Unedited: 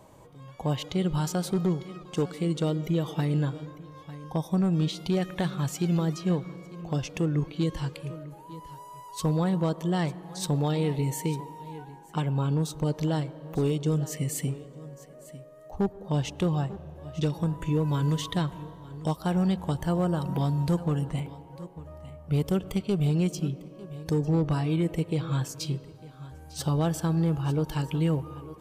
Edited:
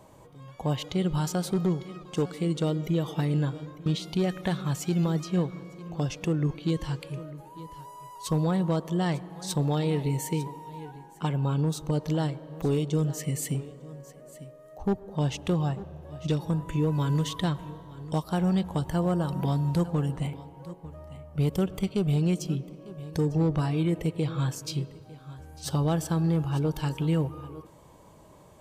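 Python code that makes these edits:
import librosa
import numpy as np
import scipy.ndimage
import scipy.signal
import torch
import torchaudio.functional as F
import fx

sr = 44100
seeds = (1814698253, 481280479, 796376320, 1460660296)

y = fx.edit(x, sr, fx.cut(start_s=3.86, length_s=0.93), tone=tone)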